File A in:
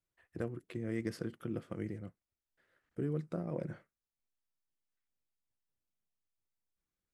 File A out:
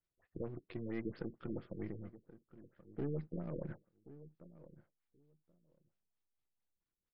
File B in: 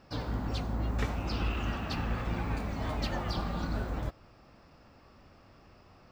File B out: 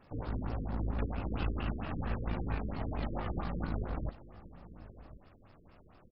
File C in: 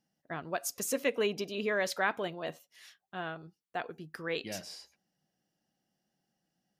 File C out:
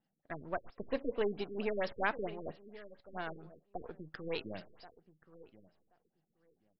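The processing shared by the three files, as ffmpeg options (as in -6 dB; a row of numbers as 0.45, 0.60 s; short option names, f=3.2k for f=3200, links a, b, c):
-filter_complex "[0:a]aeval=exprs='if(lt(val(0),0),0.447*val(0),val(0))':c=same,asplit=2[a][b];[b]adelay=1079,lowpass=f=1.2k:p=1,volume=-16dB,asplit=2[c][d];[d]adelay=1079,lowpass=f=1.2k:p=1,volume=0.16[e];[a][c][e]amix=inputs=3:normalize=0,afftfilt=real='re*lt(b*sr/1024,480*pow(5600/480,0.5+0.5*sin(2*PI*4.4*pts/sr)))':imag='im*lt(b*sr/1024,480*pow(5600/480,0.5+0.5*sin(2*PI*4.4*pts/sr)))':win_size=1024:overlap=0.75"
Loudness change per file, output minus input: -4.0, -3.0, -4.5 LU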